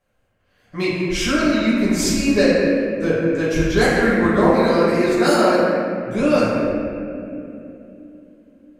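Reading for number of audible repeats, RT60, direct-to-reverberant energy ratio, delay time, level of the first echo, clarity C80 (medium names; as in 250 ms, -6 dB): no echo, 2.9 s, -10.0 dB, no echo, no echo, -1.0 dB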